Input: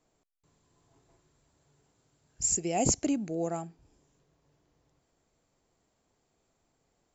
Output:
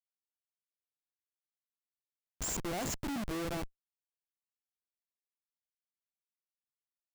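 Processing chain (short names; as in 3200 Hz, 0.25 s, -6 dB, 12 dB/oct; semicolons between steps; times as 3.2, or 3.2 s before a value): in parallel at -1 dB: compressor 10:1, threshold -40 dBFS, peak gain reduction 18.5 dB; on the sum: Schmitt trigger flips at -32 dBFS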